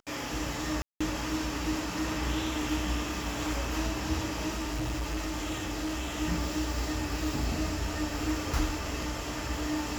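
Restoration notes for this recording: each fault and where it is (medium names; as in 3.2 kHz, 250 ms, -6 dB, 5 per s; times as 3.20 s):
0.82–1.00 s: dropout 185 ms
4.50–6.19 s: clipped -29 dBFS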